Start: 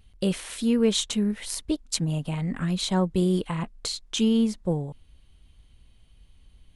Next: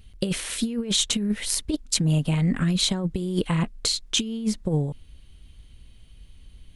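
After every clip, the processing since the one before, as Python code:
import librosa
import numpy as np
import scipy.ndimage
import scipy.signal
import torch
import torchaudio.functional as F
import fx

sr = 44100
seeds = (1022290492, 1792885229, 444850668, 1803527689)

y = fx.peak_eq(x, sr, hz=880.0, db=-5.5, octaves=1.2)
y = fx.over_compress(y, sr, threshold_db=-26.0, ratio=-0.5)
y = F.gain(torch.from_numpy(y), 4.0).numpy()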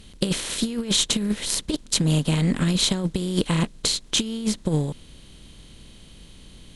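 y = fx.bin_compress(x, sr, power=0.6)
y = fx.upward_expand(y, sr, threshold_db=-33.0, expansion=1.5)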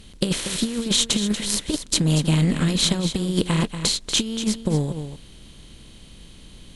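y = x + 10.0 ** (-10.0 / 20.0) * np.pad(x, (int(237 * sr / 1000.0), 0))[:len(x)]
y = F.gain(torch.from_numpy(y), 1.0).numpy()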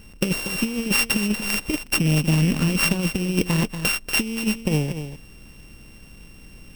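y = np.r_[np.sort(x[:len(x) // 16 * 16].reshape(-1, 16), axis=1).ravel(), x[len(x) // 16 * 16:]]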